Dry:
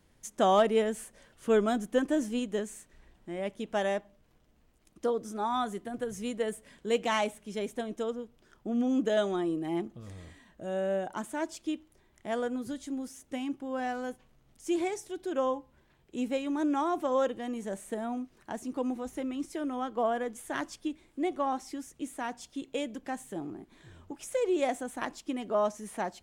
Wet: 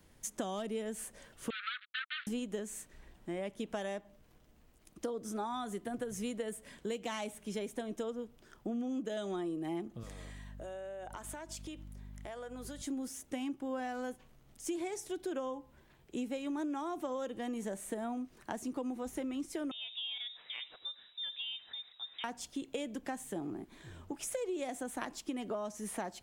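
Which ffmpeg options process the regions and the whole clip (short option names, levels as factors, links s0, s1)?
-filter_complex "[0:a]asettb=1/sr,asplit=3[s0][s1][s2];[s0]atrim=end=1.504[s3];[s1]atrim=start=1.5:end=2.27,asetpts=PTS-STARTPTS,afade=t=in:d=0.004:c=qsin,afade=t=out:st=0.766:d=0.004:c=qsin,acrusher=bits=4:mix=0:aa=0.5,asuperpass=centerf=2300:order=20:qfactor=0.81[s4];[s2]atrim=start=2.266[s5];[s3][s4]acrossfade=d=0.004:c1=hsin:c2=qsin[s6];[s6][s5]acrossfade=d=0.004:c1=qsin:c2=hsin,asettb=1/sr,asplit=3[s7][s8][s9];[s7]atrim=end=10.034[s10];[s8]atrim=start=10.03:end=12.82,asetpts=PTS-STARTPTS,afade=t=in:d=0.004:c=qsin,afade=t=out:st=2.786:d=0.004:c=qsin,highpass=430,aeval=exprs='val(0)+0.00355*(sin(2*PI*50*n/s)+sin(2*PI*2*50*n/s)/2+sin(2*PI*3*50*n/s)/3+sin(2*PI*4*50*n/s)/4+sin(2*PI*5*50*n/s)/5)':c=same,acompressor=threshold=0.00794:ratio=16:attack=3.2:release=140:knee=1:detection=peak[s11];[s9]atrim=start=12.816[s12];[s10][s11]acrossfade=d=0.004:c1=hsin:c2=qsin[s13];[s13][s12]acrossfade=d=0.004:c1=qsin:c2=hsin,asettb=1/sr,asplit=3[s14][s15][s16];[s14]atrim=end=19.714[s17];[s15]atrim=start=19.71:end=22.24,asetpts=PTS-STARTPTS,afade=t=in:d=0.004:c=qsin,afade=t=out:st=2.526:d=0.004:c=qsin,lowpass=f=3300:t=q:w=0.5098,lowpass=f=3300:t=q:w=0.6013,lowpass=f=3300:t=q:w=0.9,lowpass=f=3300:t=q:w=2.563,afreqshift=-3900,acompressor=threshold=0.00316:ratio=2:attack=3.2:release=140:knee=1:detection=peak,aecho=1:1:82:0.1,atrim=end_sample=111573[s18];[s16]atrim=start=22.236[s19];[s17][s18]acrossfade=d=0.004:c1=hsin:c2=qsin[s20];[s20][s19]acrossfade=d=0.004:c1=qsin:c2=hsin,acrossover=split=320|3000[s21][s22][s23];[s22]acompressor=threshold=0.0316:ratio=6[s24];[s21][s24][s23]amix=inputs=3:normalize=0,highshelf=f=10000:g=5,acompressor=threshold=0.0141:ratio=6,volume=1.26"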